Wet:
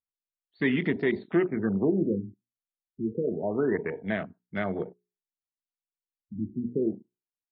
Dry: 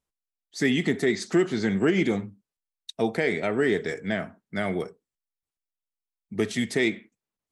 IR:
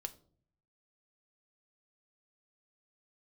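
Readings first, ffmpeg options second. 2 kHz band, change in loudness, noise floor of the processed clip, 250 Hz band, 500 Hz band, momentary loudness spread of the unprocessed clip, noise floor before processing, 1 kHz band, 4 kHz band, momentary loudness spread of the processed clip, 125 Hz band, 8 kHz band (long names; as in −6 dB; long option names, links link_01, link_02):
−6.5 dB, −3.0 dB, below −85 dBFS, −2.0 dB, −3.0 dB, 15 LU, below −85 dBFS, −4.5 dB, −13.0 dB, 11 LU, −2.5 dB, below −40 dB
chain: -af "bandreject=frequency=60:width_type=h:width=6,bandreject=frequency=120:width_type=h:width=6,bandreject=frequency=180:width_type=h:width=6,bandreject=frequency=240:width_type=h:width=6,bandreject=frequency=300:width_type=h:width=6,bandreject=frequency=360:width_type=h:width=6,bandreject=frequency=420:width_type=h:width=6,afwtdn=0.0224,afftfilt=real='re*lt(b*sr/1024,310*pow(5600/310,0.5+0.5*sin(2*PI*0.28*pts/sr)))':imag='im*lt(b*sr/1024,310*pow(5600/310,0.5+0.5*sin(2*PI*0.28*pts/sr)))':win_size=1024:overlap=0.75,volume=-1.5dB"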